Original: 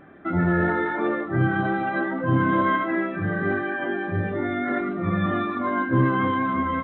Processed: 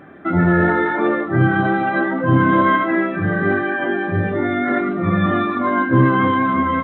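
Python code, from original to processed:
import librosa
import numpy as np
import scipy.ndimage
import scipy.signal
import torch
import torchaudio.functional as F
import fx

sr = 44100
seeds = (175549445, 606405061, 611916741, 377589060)

y = scipy.signal.sosfilt(scipy.signal.butter(2, 68.0, 'highpass', fs=sr, output='sos'), x)
y = F.gain(torch.from_numpy(y), 6.5).numpy()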